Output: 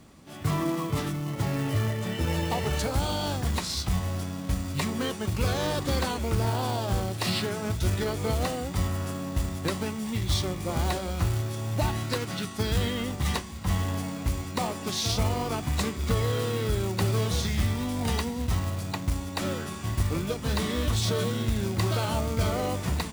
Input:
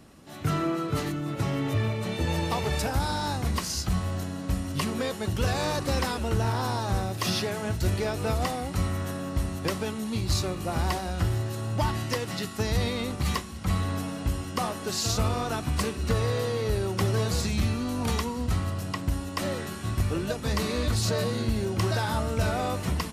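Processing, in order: short-mantissa float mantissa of 2-bit; formant shift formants -3 st

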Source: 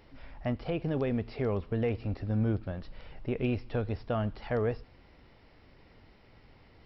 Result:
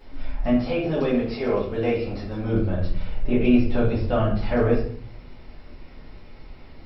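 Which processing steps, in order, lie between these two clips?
0.53–2.53 tone controls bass -10 dB, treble +6 dB; shoebox room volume 55 m³, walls mixed, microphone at 2 m

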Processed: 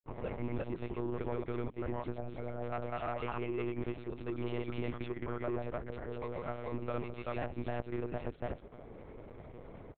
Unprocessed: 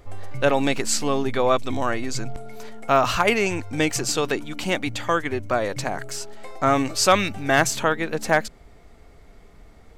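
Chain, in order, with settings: HPF 85 Hz 12 dB/oct; bell 380 Hz +6 dB 1.4 oct; notch 1700 Hz, Q 7.9; comb 3 ms, depth 45%; compressor 6:1, threshold -33 dBFS, peak gain reduction 22 dB; grains, spray 0.237 s; soft clip -32.5 dBFS, distortion -12 dB; air absorption 410 m; monotone LPC vocoder at 8 kHz 120 Hz; gain +3 dB

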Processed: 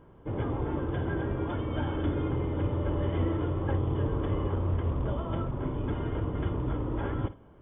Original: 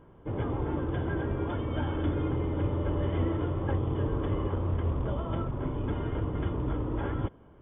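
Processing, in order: flutter echo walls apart 9.4 m, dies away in 0.22 s

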